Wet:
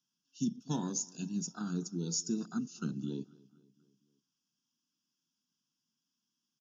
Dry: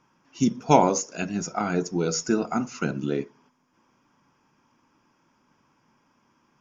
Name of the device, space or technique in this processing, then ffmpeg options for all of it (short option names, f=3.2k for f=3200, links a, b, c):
PA system with an anti-feedback notch: -filter_complex "[0:a]afwtdn=0.0355,highpass=f=140:w=0.5412,highpass=f=140:w=1.3066,asuperstop=centerf=2100:order=12:qfactor=2.4,firequalizer=gain_entry='entry(220,0);entry(590,-23);entry(1100,-11);entry(3500,14)':delay=0.05:min_phase=1,alimiter=limit=-18.5dB:level=0:latency=1:release=396,asplit=2[a][b];[b]adelay=244,lowpass=f=4.6k:p=1,volume=-23dB,asplit=2[c][d];[d]adelay=244,lowpass=f=4.6k:p=1,volume=0.55,asplit=2[e][f];[f]adelay=244,lowpass=f=4.6k:p=1,volume=0.55,asplit=2[g][h];[h]adelay=244,lowpass=f=4.6k:p=1,volume=0.55[i];[a][c][e][g][i]amix=inputs=5:normalize=0,asplit=3[j][k][l];[j]afade=t=out:st=0.85:d=0.02[m];[k]adynamicequalizer=threshold=0.00631:dfrequency=6200:dqfactor=0.7:tfrequency=6200:tqfactor=0.7:attack=5:release=100:ratio=0.375:range=3.5:mode=boostabove:tftype=highshelf,afade=t=in:st=0.85:d=0.02,afade=t=out:st=2.5:d=0.02[n];[l]afade=t=in:st=2.5:d=0.02[o];[m][n][o]amix=inputs=3:normalize=0,volume=-6dB"